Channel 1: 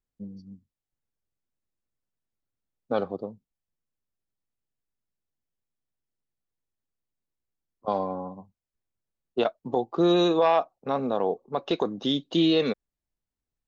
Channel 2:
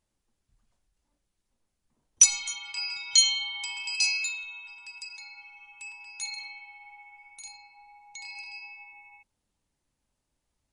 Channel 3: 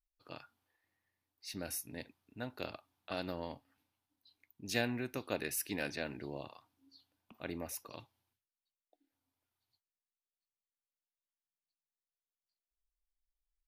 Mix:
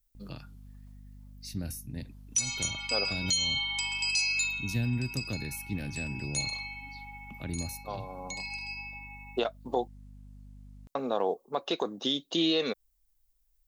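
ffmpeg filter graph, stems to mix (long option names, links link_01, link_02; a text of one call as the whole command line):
ffmpeg -i stem1.wav -i stem2.wav -i stem3.wav -filter_complex "[0:a]aemphasis=mode=production:type=bsi,volume=-0.5dB,asplit=3[link_01][link_02][link_03];[link_01]atrim=end=9.88,asetpts=PTS-STARTPTS,afade=type=out:start_time=9.876:duration=0.004:curve=hsin[link_04];[link_02]atrim=start=9.88:end=10.95,asetpts=PTS-STARTPTS,volume=0[link_05];[link_03]atrim=start=10.95,asetpts=PTS-STARTPTS,afade=type=in:duration=0.004:curve=hsin[link_06];[link_04][link_05][link_06]concat=n=3:v=0:a=1[link_07];[1:a]aeval=exprs='val(0)+0.00282*(sin(2*PI*50*n/s)+sin(2*PI*2*50*n/s)/2+sin(2*PI*3*50*n/s)/3+sin(2*PI*4*50*n/s)/4+sin(2*PI*5*50*n/s)/5)':channel_layout=same,adelay=150,volume=3dB[link_08];[2:a]bass=frequency=250:gain=14,treble=frequency=4000:gain=10,acrossover=split=240[link_09][link_10];[link_10]acompressor=threshold=-45dB:ratio=4[link_11];[link_09][link_11]amix=inputs=2:normalize=0,volume=2dB,asplit=2[link_12][link_13];[link_13]apad=whole_len=602884[link_14];[link_07][link_14]sidechaincompress=threshold=-50dB:ratio=8:attack=5.7:release=375[link_15];[link_15][link_08][link_12]amix=inputs=3:normalize=0,alimiter=limit=-17dB:level=0:latency=1:release=263" out.wav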